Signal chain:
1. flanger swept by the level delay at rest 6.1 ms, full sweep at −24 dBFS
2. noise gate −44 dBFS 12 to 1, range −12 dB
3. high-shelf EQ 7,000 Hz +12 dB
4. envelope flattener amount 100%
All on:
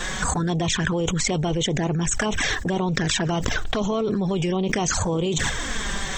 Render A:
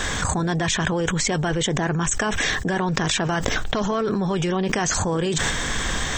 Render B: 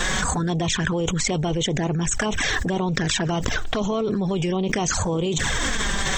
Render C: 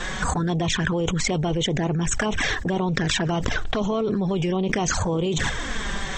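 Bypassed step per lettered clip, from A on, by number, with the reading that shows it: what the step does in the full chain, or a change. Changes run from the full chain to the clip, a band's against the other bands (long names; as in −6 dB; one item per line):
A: 1, 1 kHz band +2.0 dB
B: 2, change in momentary loudness spread −2 LU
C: 3, 8 kHz band −3.0 dB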